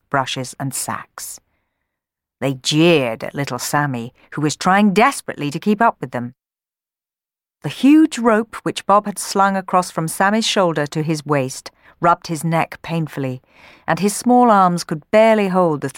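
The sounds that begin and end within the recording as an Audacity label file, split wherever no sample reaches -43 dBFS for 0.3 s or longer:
2.410000	6.310000	sound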